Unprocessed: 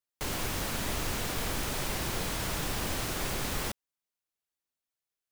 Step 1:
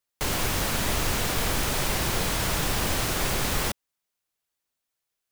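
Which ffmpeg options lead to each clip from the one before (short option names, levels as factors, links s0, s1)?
-af "equalizer=f=280:w=1.5:g=-2,volume=2.24"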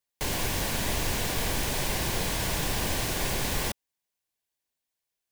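-af "bandreject=f=1300:w=5,volume=0.75"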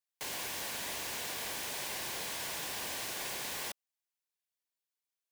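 -af "highpass=f=740:p=1,volume=0.447"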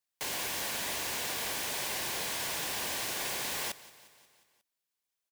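-af "aecho=1:1:179|358|537|716|895:0.112|0.0673|0.0404|0.0242|0.0145,volume=1.58"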